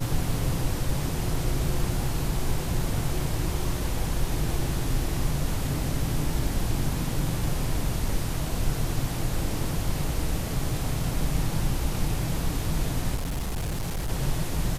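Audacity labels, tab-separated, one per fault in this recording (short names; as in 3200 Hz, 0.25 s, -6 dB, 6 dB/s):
13.150000	14.100000	clipped -25.5 dBFS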